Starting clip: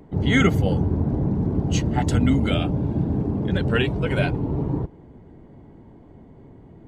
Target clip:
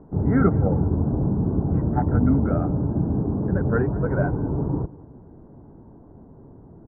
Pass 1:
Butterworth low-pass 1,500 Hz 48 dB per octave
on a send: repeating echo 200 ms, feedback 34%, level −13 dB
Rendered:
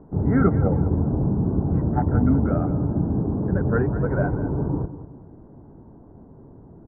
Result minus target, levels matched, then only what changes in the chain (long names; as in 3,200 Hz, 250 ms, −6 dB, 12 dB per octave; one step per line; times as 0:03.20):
echo-to-direct +8.5 dB
change: repeating echo 200 ms, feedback 34%, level −21.5 dB